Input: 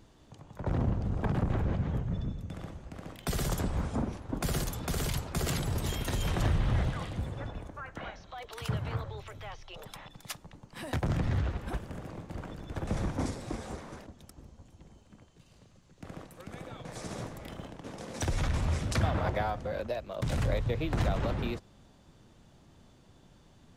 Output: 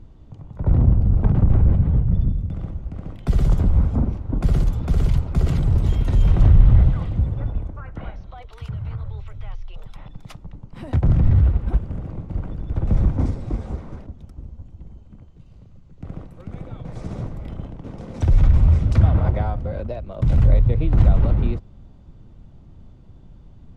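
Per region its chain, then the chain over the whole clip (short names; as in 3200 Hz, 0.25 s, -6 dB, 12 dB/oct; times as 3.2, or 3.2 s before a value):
8.42–9.98 bell 320 Hz -8 dB 2.9 oct + compressor 4:1, threshold -38 dBFS
whole clip: RIAA curve playback; notch 1700 Hz, Q 11; gain +1 dB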